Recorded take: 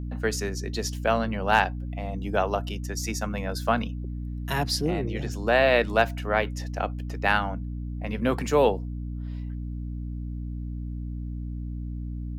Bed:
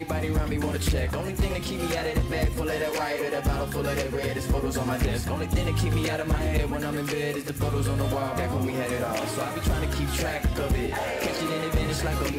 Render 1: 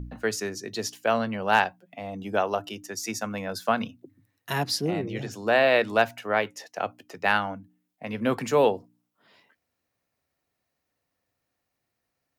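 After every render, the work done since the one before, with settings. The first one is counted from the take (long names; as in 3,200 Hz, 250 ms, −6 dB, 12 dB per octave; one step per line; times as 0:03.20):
hum removal 60 Hz, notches 5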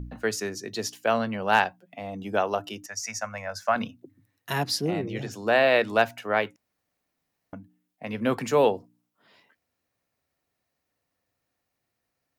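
0:02.86–0:03.76: drawn EQ curve 100 Hz 0 dB, 150 Hz −16 dB, 240 Hz −10 dB, 350 Hz −29 dB, 590 Hz +2 dB, 850 Hz −1 dB, 2,100 Hz +3 dB, 3,500 Hz −12 dB, 5,800 Hz +3 dB, 11,000 Hz −9 dB
0:06.56–0:07.53: fill with room tone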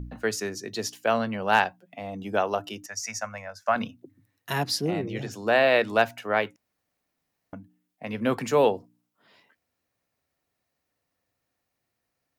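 0:03.12–0:03.66: fade out equal-power, to −17.5 dB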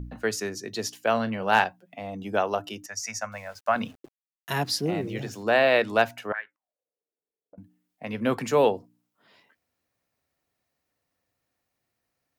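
0:01.13–0:01.64: double-tracking delay 36 ms −14 dB
0:03.32–0:05.43: centre clipping without the shift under −50 dBFS
0:06.32–0:07.58: envelope filter 430–1,700 Hz, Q 8.1, up, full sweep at −23.5 dBFS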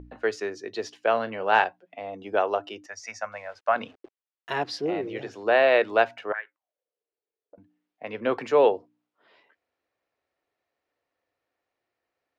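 low-pass filter 3,400 Hz 12 dB per octave
low shelf with overshoot 270 Hz −9.5 dB, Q 1.5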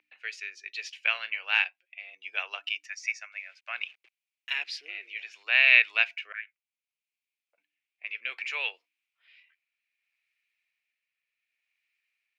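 rotating-speaker cabinet horn 0.65 Hz
high-pass with resonance 2,400 Hz, resonance Q 5.8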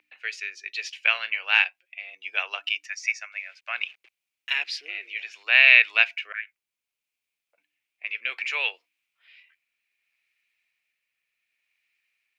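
level +5 dB
brickwall limiter −2 dBFS, peak gain reduction 2 dB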